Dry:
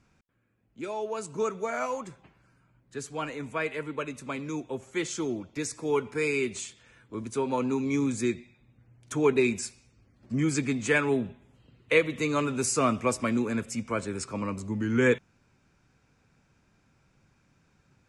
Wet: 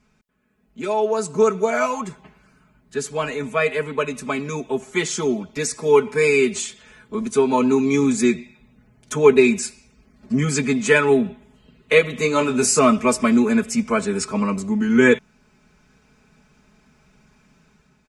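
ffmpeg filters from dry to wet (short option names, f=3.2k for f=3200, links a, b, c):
-filter_complex "[0:a]asettb=1/sr,asplit=3[a][b][c];[a]atrim=end=12.224[d];[b]atrim=start=12.22:end=12.79,asetpts=PTS-STARTPTS,afade=t=in:d=0.004:c=qsin,afade=t=out:st=0.566:d=0.004:c=qsin,asplit=2[e][f];[f]adelay=24,volume=-7.5dB[g];[e][g]amix=inputs=2:normalize=0,atrim=end_sample=25137[h];[c]atrim=start=12.786[i];[d][h]acrossfade=d=0.004:c1=hsin:c2=qsin[j];[j][i]acrossfade=d=0.004:c1=qsin:c2=hsin,aecho=1:1:4.7:0.93,dynaudnorm=f=140:g=7:m=6.5dB,volume=1dB"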